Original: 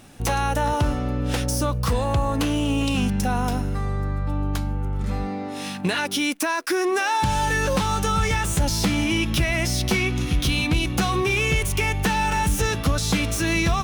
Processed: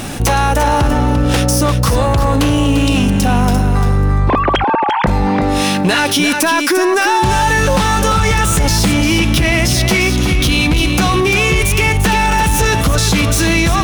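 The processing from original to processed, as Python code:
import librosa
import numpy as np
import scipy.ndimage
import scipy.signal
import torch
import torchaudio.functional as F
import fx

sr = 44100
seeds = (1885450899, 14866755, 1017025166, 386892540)

p1 = fx.sine_speech(x, sr, at=(4.29, 5.07))
p2 = fx.rider(p1, sr, range_db=10, speed_s=0.5)
p3 = p1 + F.gain(torch.from_numpy(p2), 1.5).numpy()
p4 = 10.0 ** (-10.0 / 20.0) * np.tanh(p3 / 10.0 ** (-10.0 / 20.0))
p5 = p4 + 10.0 ** (-8.0 / 20.0) * np.pad(p4, (int(346 * sr / 1000.0), 0))[:len(p4)]
p6 = fx.env_flatten(p5, sr, amount_pct=50)
y = F.gain(torch.from_numpy(p6), 2.0).numpy()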